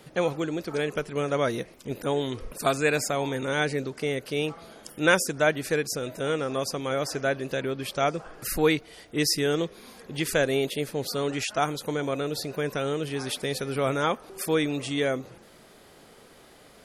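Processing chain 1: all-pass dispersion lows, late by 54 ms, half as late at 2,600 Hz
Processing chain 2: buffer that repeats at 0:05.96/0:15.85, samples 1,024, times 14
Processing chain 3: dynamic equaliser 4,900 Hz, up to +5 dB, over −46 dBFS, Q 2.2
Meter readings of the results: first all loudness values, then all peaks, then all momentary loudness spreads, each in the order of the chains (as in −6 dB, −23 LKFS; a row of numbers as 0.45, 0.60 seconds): −27.5, −27.5, −27.0 LKFS; −7.5, −6.0, −6.0 dBFS; 7, 8, 8 LU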